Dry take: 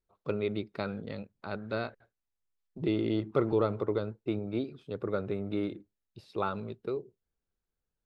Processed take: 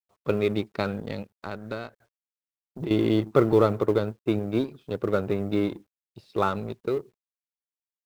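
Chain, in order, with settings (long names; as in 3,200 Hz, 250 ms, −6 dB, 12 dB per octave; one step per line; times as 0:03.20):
mu-law and A-law mismatch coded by A
0:01.30–0:02.91: downward compressor 6 to 1, threshold −38 dBFS, peak gain reduction 12 dB
level +8.5 dB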